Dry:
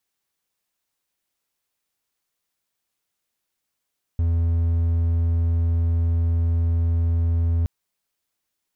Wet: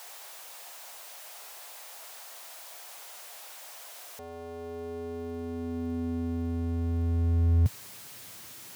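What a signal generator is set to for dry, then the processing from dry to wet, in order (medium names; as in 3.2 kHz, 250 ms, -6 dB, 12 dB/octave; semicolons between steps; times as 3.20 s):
tone triangle 83.7 Hz -15.5 dBFS 3.47 s
jump at every zero crossing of -40 dBFS; high-pass sweep 670 Hz -> 110 Hz, 3.91–7.73 s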